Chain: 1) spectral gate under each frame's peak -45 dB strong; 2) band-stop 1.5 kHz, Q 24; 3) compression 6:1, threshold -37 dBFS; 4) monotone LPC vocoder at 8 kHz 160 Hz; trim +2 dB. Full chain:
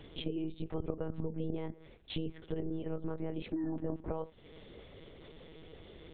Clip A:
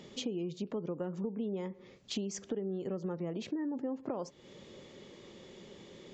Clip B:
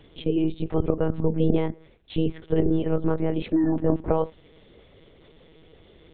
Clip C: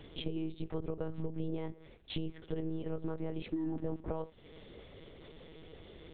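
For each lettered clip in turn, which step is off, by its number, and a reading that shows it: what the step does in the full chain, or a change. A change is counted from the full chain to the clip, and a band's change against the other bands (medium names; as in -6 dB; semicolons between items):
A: 4, 125 Hz band -4.0 dB; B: 3, mean gain reduction 8.5 dB; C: 1, crest factor change -4.0 dB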